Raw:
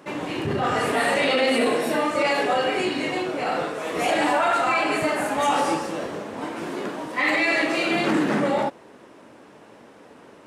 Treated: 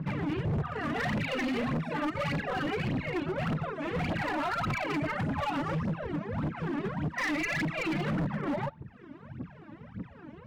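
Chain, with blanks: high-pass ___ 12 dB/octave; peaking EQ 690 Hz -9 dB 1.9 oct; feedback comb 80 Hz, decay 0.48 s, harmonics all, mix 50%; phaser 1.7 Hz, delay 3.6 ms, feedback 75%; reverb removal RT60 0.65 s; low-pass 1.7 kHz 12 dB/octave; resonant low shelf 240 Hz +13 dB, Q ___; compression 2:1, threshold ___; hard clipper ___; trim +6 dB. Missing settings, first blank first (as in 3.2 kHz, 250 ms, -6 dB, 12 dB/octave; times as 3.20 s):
52 Hz, 1.5, -34 dBFS, -33.5 dBFS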